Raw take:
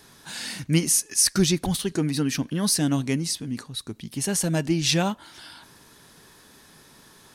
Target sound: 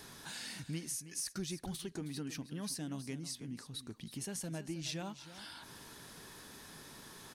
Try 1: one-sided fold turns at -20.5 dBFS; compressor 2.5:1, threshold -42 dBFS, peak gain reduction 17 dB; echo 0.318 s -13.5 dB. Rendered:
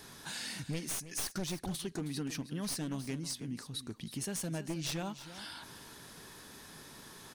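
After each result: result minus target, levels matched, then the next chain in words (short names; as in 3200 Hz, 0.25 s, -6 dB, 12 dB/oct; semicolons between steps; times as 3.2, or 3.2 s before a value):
one-sided fold: distortion +29 dB; compressor: peak gain reduction -4.5 dB
one-sided fold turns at -9.5 dBFS; compressor 2.5:1, threshold -42 dBFS, peak gain reduction 17.5 dB; echo 0.318 s -13.5 dB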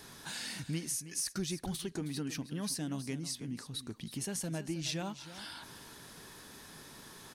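compressor: peak gain reduction -4 dB
one-sided fold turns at -9.5 dBFS; compressor 2.5:1, threshold -48.5 dBFS, peak gain reduction 21.5 dB; echo 0.318 s -13.5 dB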